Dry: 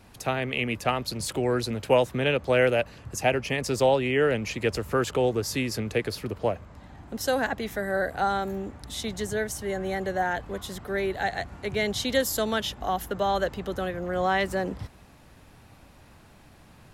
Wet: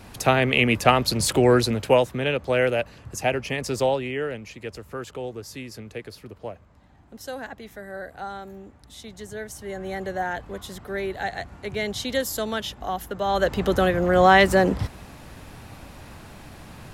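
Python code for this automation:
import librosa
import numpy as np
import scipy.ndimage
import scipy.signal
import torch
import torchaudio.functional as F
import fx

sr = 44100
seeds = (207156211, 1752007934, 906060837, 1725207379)

y = fx.gain(x, sr, db=fx.line((1.53, 8.5), (2.16, 0.0), (3.81, 0.0), (4.47, -9.0), (9.07, -9.0), (10.0, -1.0), (13.2, -1.0), (13.62, 10.0)))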